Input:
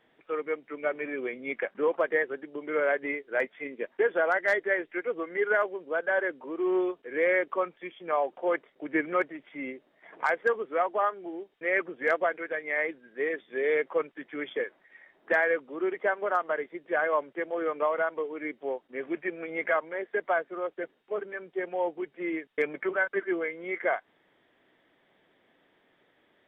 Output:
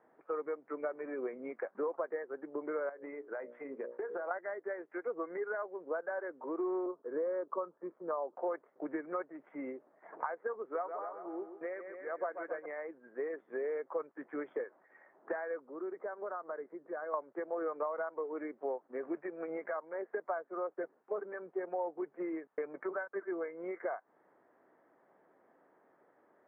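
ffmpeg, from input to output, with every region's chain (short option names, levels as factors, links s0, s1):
-filter_complex "[0:a]asettb=1/sr,asplit=3[s0][s1][s2];[s0]atrim=end=2.894[s3];[s1]atrim=start=2.89:end=4.31,asetpts=PTS-STARTPTS,afade=t=in:d=0.004:c=qsin,afade=t=out:st=1.416:d=0.004:c=qsin,bandreject=f=60:t=h:w=6,bandreject=f=120:t=h:w=6,bandreject=f=180:t=h:w=6,bandreject=f=240:t=h:w=6,bandreject=f=300:t=h:w=6,bandreject=f=360:t=h:w=6,bandreject=f=420:t=h:w=6,bandreject=f=480:t=h:w=6,bandreject=f=540:t=h:w=6,bandreject=f=600:t=h:w=6,acompressor=threshold=0.02:ratio=16:attack=3.2:release=140:knee=1:detection=peak[s4];[s2]atrim=start=4.306[s5];[s3][s4]acrossfade=d=0.004:c1=hsin:c2=qsin[s6];[s6][s5]acrossfade=d=0.004:c1=qsin:c2=hsin,asettb=1/sr,asplit=3[s7][s8][s9];[s7]atrim=end=6.864[s10];[s8]atrim=start=6.86:end=8.36,asetpts=PTS-STARTPTS,afade=t=in:d=0.004:c=qsin,afade=t=out:st=1.496:d=0.004:c=qsin,lowpass=f=1300:w=0.5412,lowpass=f=1300:w=1.3066,equalizer=f=760:w=7.1:g=-9.5[s11];[s9]atrim=start=8.356[s12];[s10][s11]acrossfade=d=0.004:c1=hsin:c2=qsin[s13];[s13][s12]acrossfade=d=0.004:c1=qsin:c2=hsin,asettb=1/sr,asplit=3[s14][s15][s16];[s14]atrim=end=10.614[s17];[s15]atrim=start=10.61:end=12.66,asetpts=PTS-STARTPTS,afade=t=in:d=0.004:c=qsin,afade=t=out:st=2.046:d=0.004:c=qsin,bass=f=250:g=-1,treble=f=4000:g=9,tremolo=f=1.1:d=0.89,aecho=1:1:134|268|402|536|670|804:0.316|0.161|0.0823|0.0419|0.0214|0.0109,atrim=end_sample=90405[s18];[s16]atrim=start=12.656[s19];[s17][s18]acrossfade=d=0.004:c1=hsin:c2=qsin[s20];[s20][s19]acrossfade=d=0.004:c1=qsin:c2=hsin,asettb=1/sr,asplit=3[s21][s22][s23];[s21]atrim=end=15.684[s24];[s22]atrim=start=15.68:end=17.14,asetpts=PTS-STARTPTS,afade=t=in:d=0.004:c=qsin,afade=t=out:st=1.456:d=0.004:c=qsin,acompressor=threshold=0.00708:ratio=2:attack=3.2:release=140:knee=1:detection=peak,lowpass=1800,equalizer=f=830:t=o:w=0.96:g=-4[s25];[s23]atrim=start=17.136[s26];[s24][s25]acrossfade=d=0.004:c1=hsin:c2=qsin[s27];[s27][s26]acrossfade=d=0.004:c1=qsin:c2=hsin,highpass=f=500:p=1,acompressor=threshold=0.0141:ratio=6,lowpass=f=1300:w=0.5412,lowpass=f=1300:w=1.3066,volume=1.58"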